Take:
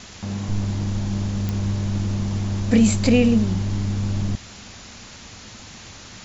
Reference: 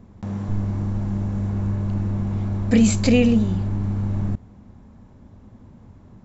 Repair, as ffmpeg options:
-af "adeclick=t=4,afwtdn=0.013"

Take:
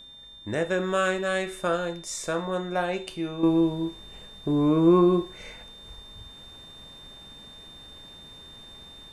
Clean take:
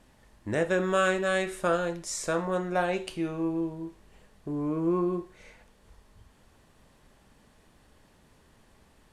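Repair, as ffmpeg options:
-af "bandreject=f=3600:w=30,asetnsamples=n=441:p=0,asendcmd='3.43 volume volume -8.5dB',volume=1"

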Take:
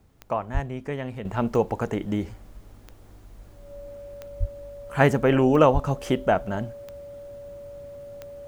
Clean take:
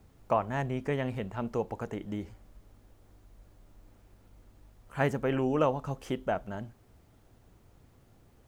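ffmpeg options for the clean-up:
-filter_complex "[0:a]adeclick=t=4,bandreject=f=570:w=30,asplit=3[s0][s1][s2];[s0]afade=t=out:st=0.53:d=0.02[s3];[s1]highpass=f=140:w=0.5412,highpass=f=140:w=1.3066,afade=t=in:st=0.53:d=0.02,afade=t=out:st=0.65:d=0.02[s4];[s2]afade=t=in:st=0.65:d=0.02[s5];[s3][s4][s5]amix=inputs=3:normalize=0,asplit=3[s6][s7][s8];[s6]afade=t=out:st=4.39:d=0.02[s9];[s7]highpass=f=140:w=0.5412,highpass=f=140:w=1.3066,afade=t=in:st=4.39:d=0.02,afade=t=out:st=4.51:d=0.02[s10];[s8]afade=t=in:st=4.51:d=0.02[s11];[s9][s10][s11]amix=inputs=3:normalize=0,asplit=3[s12][s13][s14];[s12]afade=t=out:st=5.73:d=0.02[s15];[s13]highpass=f=140:w=0.5412,highpass=f=140:w=1.3066,afade=t=in:st=5.73:d=0.02,afade=t=out:st=5.85:d=0.02[s16];[s14]afade=t=in:st=5.85:d=0.02[s17];[s15][s16][s17]amix=inputs=3:normalize=0,asetnsamples=n=441:p=0,asendcmd='1.25 volume volume -9.5dB',volume=1"

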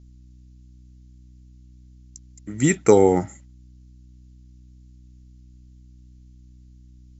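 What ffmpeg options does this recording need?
-af "bandreject=f=62.1:t=h:w=4,bandreject=f=124.2:t=h:w=4,bandreject=f=186.3:t=h:w=4,bandreject=f=248.4:t=h:w=4,bandreject=f=310.5:t=h:w=4,agate=range=0.0891:threshold=0.00891"

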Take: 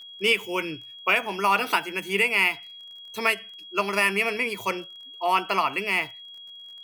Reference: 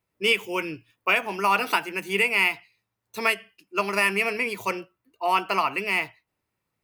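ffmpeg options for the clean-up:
-af "adeclick=t=4,bandreject=f=3300:w=30"

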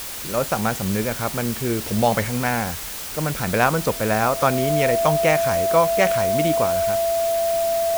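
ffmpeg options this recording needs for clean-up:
-af "bandreject=f=670:w=30,afwtdn=0.025"

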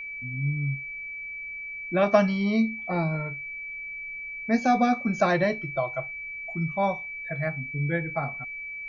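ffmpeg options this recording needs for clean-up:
-af "bandreject=f=2300:w=30,agate=range=0.0891:threshold=0.0355"

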